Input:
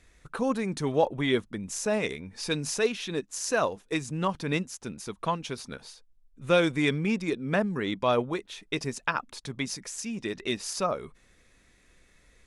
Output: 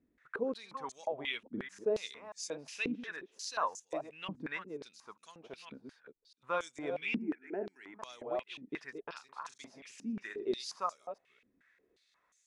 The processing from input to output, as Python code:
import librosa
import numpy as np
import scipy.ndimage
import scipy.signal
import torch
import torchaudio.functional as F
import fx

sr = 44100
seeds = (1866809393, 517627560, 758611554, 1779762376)

y = fx.reverse_delay(x, sr, ms=211, wet_db=-9)
y = fx.fixed_phaser(y, sr, hz=770.0, stages=8, at=(7.18, 7.94))
y = fx.doubler(y, sr, ms=41.0, db=-11, at=(9.06, 10.61))
y = fx.filter_held_bandpass(y, sr, hz=5.6, low_hz=260.0, high_hz=6700.0)
y = y * librosa.db_to_amplitude(1.0)